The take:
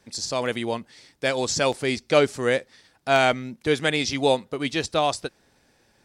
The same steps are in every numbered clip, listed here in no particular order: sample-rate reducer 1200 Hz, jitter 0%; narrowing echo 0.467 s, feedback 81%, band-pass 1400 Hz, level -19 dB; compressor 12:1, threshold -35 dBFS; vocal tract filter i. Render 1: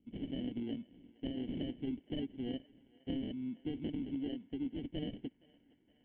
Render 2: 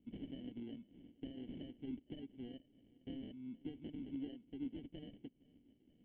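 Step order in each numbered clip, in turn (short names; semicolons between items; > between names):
sample-rate reducer > vocal tract filter > compressor > narrowing echo; compressor > narrowing echo > sample-rate reducer > vocal tract filter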